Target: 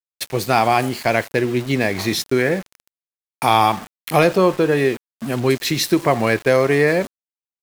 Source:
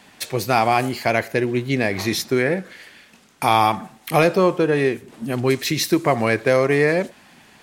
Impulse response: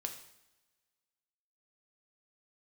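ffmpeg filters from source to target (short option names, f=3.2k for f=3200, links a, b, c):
-filter_complex "[0:a]asplit=2[a][b];[b]asuperpass=centerf=3700:order=12:qfactor=0.7[c];[1:a]atrim=start_sample=2205[d];[c][d]afir=irnorm=-1:irlink=0,volume=-15.5dB[e];[a][e]amix=inputs=2:normalize=0,aeval=exprs='val(0)*gte(abs(val(0)),0.0266)':c=same,volume=1.5dB"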